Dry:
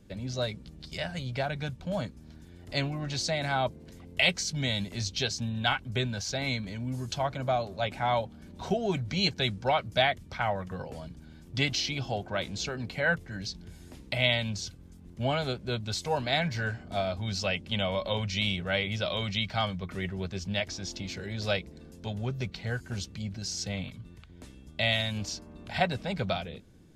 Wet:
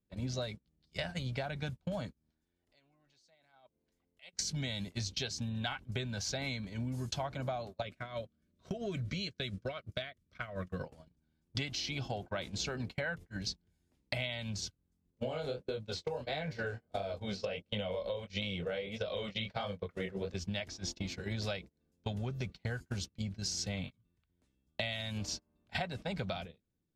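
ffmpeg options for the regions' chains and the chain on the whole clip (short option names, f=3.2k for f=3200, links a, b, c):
-filter_complex "[0:a]asettb=1/sr,asplit=3[a][b][c];[a]atrim=end=2.304[d];[b]atrim=start=2.3:end=4.33,asetpts=PTS-STARTPTS,afade=t=in:d=0.004:c=qsin,afade=t=out:st=2.026:d=0.004:c=qsin,equalizer=f=110:t=o:w=1.9:g=-11,acompressor=threshold=-42dB:ratio=3:attack=3.2:release=140:knee=1:detection=peak[e];[c]atrim=start=4.326[f];[d][e]acrossfade=d=0.004:c1=hsin:c2=qsin[g];[g][f]acrossfade=d=0.004:c1=qsin:c2=hsin,asettb=1/sr,asplit=3[h][i][j];[h]atrim=end=7.824[k];[i]atrim=start=7.82:end=10.83,asetpts=PTS-STARTPTS,afade=t=in:d=0.004:c=qsin,afade=t=out:st=3.006:d=0.004:c=qsin,acompressor=threshold=-31dB:ratio=20:attack=3.2:release=140:knee=1:detection=peak,asuperstop=centerf=840:order=4:qfactor=2.4[l];[j]atrim=start=10.826[m];[k][l]acrossfade=d=0.004:c1=hsin:c2=qsin[n];[n][m]acrossfade=d=0.004:c1=qsin:c2=hsin,asettb=1/sr,asplit=3[o][p][q];[o]atrim=end=15.114[r];[p]atrim=start=15.11:end=20.34,asetpts=PTS-STARTPTS,afade=t=in:d=0.004:c=qsin,afade=t=out:st=5.226:d=0.004:c=qsin,equalizer=f=490:w=3.2:g=14.5,acrossover=split=100|5300[s][t][u];[s]acompressor=threshold=-46dB:ratio=4[v];[t]acompressor=threshold=-26dB:ratio=4[w];[u]acompressor=threshold=-55dB:ratio=4[x];[v][w][x]amix=inputs=3:normalize=0,flanger=delay=19:depth=7.4:speed=1.5[y];[q]atrim=start=20.336[z];[r][y]acrossfade=d=0.004:c1=hsin:c2=qsin[aa];[aa][z]acrossfade=d=0.004:c1=qsin:c2=hsin,agate=range=-34dB:threshold=-36dB:ratio=16:detection=peak,acompressor=threshold=-40dB:ratio=12,volume=6dB"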